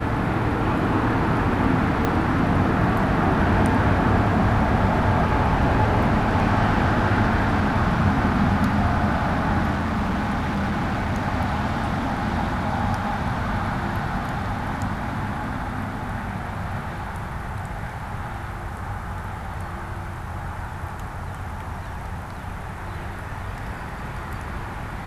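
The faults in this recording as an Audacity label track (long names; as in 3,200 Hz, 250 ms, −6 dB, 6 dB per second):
2.050000	2.050000	click −9 dBFS
9.710000	11.270000	clipping −20 dBFS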